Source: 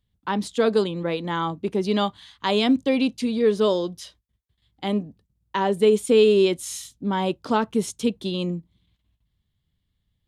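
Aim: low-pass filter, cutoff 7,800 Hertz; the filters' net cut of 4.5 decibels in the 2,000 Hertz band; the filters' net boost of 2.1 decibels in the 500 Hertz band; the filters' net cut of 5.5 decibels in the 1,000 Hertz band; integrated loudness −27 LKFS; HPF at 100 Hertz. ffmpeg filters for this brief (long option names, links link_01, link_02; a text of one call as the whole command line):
ffmpeg -i in.wav -af "highpass=100,lowpass=7800,equalizer=frequency=500:width_type=o:gain=4,equalizer=frequency=1000:width_type=o:gain=-7.5,equalizer=frequency=2000:width_type=o:gain=-4,volume=-5dB" out.wav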